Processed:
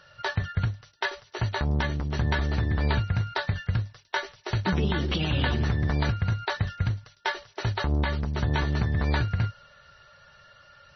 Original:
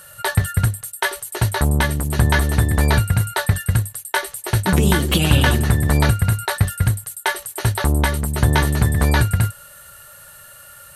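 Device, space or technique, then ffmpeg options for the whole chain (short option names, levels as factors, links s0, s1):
low-bitrate web radio: -af "dynaudnorm=f=410:g=13:m=3.98,alimiter=limit=0.398:level=0:latency=1:release=81,volume=0.447" -ar 24000 -c:a libmp3lame -b:a 24k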